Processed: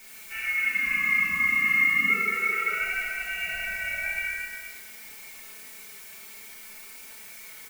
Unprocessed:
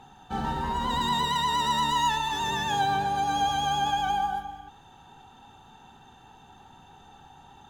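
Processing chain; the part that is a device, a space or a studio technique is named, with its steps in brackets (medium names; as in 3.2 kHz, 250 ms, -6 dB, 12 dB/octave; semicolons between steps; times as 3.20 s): high-pass 190 Hz; scrambled radio voice (band-pass 370–2600 Hz; frequency inversion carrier 3.1 kHz; white noise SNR 20 dB); treble shelf 9.3 kHz +4.5 dB; comb 4.6 ms, depth 81%; Schroeder reverb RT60 1.2 s, combs from 26 ms, DRR -3.5 dB; trim -5 dB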